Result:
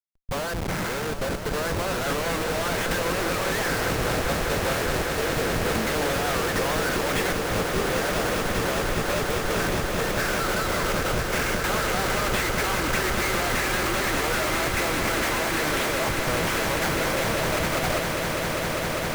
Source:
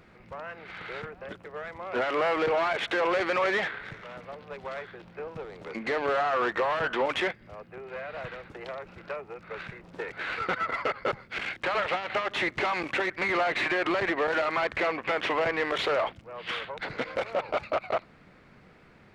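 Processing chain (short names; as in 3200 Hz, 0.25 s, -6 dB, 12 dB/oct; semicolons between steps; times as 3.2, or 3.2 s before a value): median filter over 9 samples; dynamic EQ 1600 Hz, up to +4 dB, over -44 dBFS, Q 2.5; in parallel at 0 dB: limiter -26 dBFS, peak gain reduction 9.5 dB; on the sum: Schmitt trigger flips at -36 dBFS; gate -29 dBFS, range -32 dB; swelling echo 0.2 s, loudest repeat 8, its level -9.5 dB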